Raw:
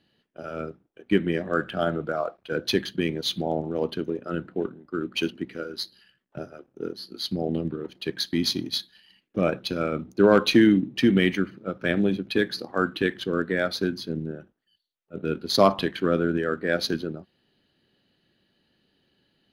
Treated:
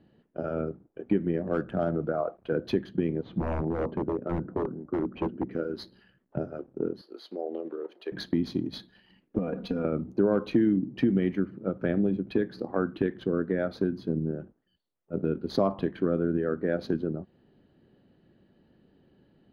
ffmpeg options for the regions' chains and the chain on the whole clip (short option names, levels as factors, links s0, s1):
-filter_complex "[0:a]asettb=1/sr,asplit=3[s0][s1][s2];[s0]atrim=end=1.414[s3];[s1]atrim=start=1.41:end=1.95,asetpts=PTS-STARTPTS,afade=t=in:d=0.004:c=qsin,afade=t=out:st=0.536:d=0.004:c=qsin,volume=5.01,asoftclip=hard,volume=0.2,adynamicsmooth=sensitivity=4.5:basefreq=1200[s4];[s2]atrim=start=1.946[s5];[s3][s4]acrossfade=d=0.004:c1=hsin:c2=qsin[s6];[s6][s5]acrossfade=d=0.004:c1=qsin:c2=hsin,asettb=1/sr,asplit=3[s7][s8][s9];[s7]atrim=end=3.224[s10];[s8]atrim=start=3.22:end=5.51,asetpts=PTS-STARTPTS,afade=t=in:d=0.004:c=qsin,afade=t=out:st=2.286:d=0.004:c=qsin,lowpass=1500,aeval=exprs='0.0631*(abs(mod(val(0)/0.0631+3,4)-2)-1)':c=same[s11];[s9]atrim=start=5.506[s12];[s10][s11]acrossfade=d=0.004:c1=hsin:c2=qsin[s13];[s13][s12]acrossfade=d=0.004:c1=qsin:c2=hsin,asettb=1/sr,asplit=3[s14][s15][s16];[s14]atrim=end=7.014[s17];[s15]atrim=start=7.01:end=8.12,asetpts=PTS-STARTPTS,afade=t=in:d=0.004:c=qsin,afade=t=out:st=1.106:d=0.004:c=qsin,highpass=f=410:w=0.5412,highpass=f=410:w=1.3066,acompressor=threshold=0.00355:ratio=1.5:attack=3.2:release=140:knee=1:detection=peak[s18];[s16]atrim=start=8.116[s19];[s17][s18]acrossfade=d=0.004:c1=hsin:c2=qsin[s20];[s20][s19]acrossfade=d=0.004:c1=qsin:c2=hsin,asettb=1/sr,asplit=3[s21][s22][s23];[s21]atrim=end=9.384[s24];[s22]atrim=start=9.38:end=9.85,asetpts=PTS-STARTPTS,afade=t=in:d=0.004:c=qsin,afade=t=out:st=0.466:d=0.004:c=qsin,acompressor=threshold=0.0224:ratio=3:attack=3.2:release=140:knee=1:detection=peak,aecho=1:1:4.2:0.99,atrim=end_sample=20727[s25];[s23]atrim=start=9.846[s26];[s24][s25]acrossfade=d=0.004:c1=hsin:c2=qsin[s27];[s27][s26]acrossfade=d=0.004:c1=qsin:c2=hsin,tiltshelf=f=1500:g=9,acompressor=threshold=0.0355:ratio=2.5,highshelf=f=3700:g=-9.5,volume=1.12"